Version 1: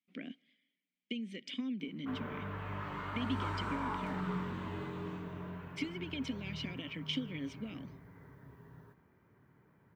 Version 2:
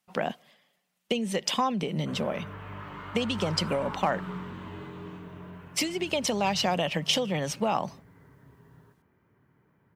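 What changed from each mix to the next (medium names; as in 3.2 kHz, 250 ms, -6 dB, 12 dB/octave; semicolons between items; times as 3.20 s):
speech: remove vowel filter i; master: add peaking EQ 3 kHz +2.5 dB 0.23 oct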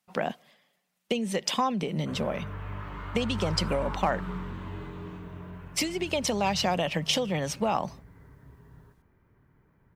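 background: remove high-pass 120 Hz 12 dB/octave; master: add peaking EQ 3 kHz -2.5 dB 0.23 oct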